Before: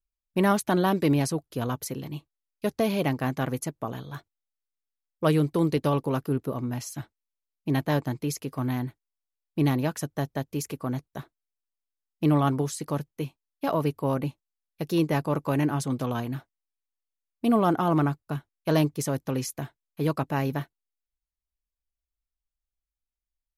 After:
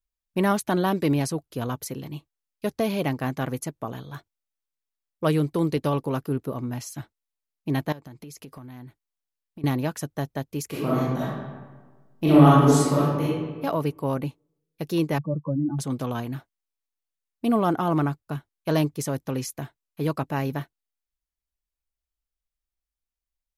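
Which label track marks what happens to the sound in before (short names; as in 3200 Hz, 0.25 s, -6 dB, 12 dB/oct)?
7.920000	9.640000	compressor 12:1, threshold -38 dBFS
10.680000	13.230000	reverb throw, RT60 1.4 s, DRR -9 dB
15.180000	15.790000	spectral contrast raised exponent 3.4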